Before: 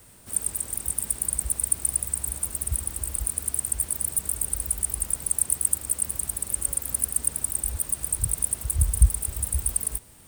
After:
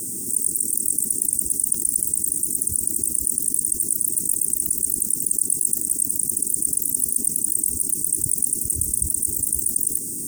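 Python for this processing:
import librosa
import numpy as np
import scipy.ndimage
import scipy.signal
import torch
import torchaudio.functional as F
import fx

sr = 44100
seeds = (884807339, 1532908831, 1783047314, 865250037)

y = scipy.signal.sosfilt(scipy.signal.butter(2, 340.0, 'highpass', fs=sr, output='sos'), x)
y = fx.low_shelf(y, sr, hz=470.0, db=3.0)
y = fx.mod_noise(y, sr, seeds[0], snr_db=15)
y = scipy.signal.sosfilt(scipy.signal.cheby2(4, 40, [600.0, 3700.0], 'bandstop', fs=sr, output='sos'), y)
y = fx.vibrato(y, sr, rate_hz=8.6, depth_cents=21.0)
y = fx.graphic_eq_10(y, sr, hz=(1000, 2000, 16000), db=(10, -7, -3))
y = fx.env_flatten(y, sr, amount_pct=70)
y = y * librosa.db_to_amplitude(2.5)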